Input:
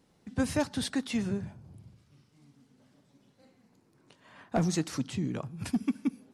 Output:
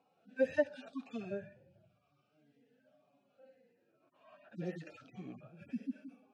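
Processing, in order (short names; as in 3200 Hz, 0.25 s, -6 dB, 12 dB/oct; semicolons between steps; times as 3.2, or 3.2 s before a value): median-filter separation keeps harmonic; vowel sweep a-e 0.95 Hz; gain +11.5 dB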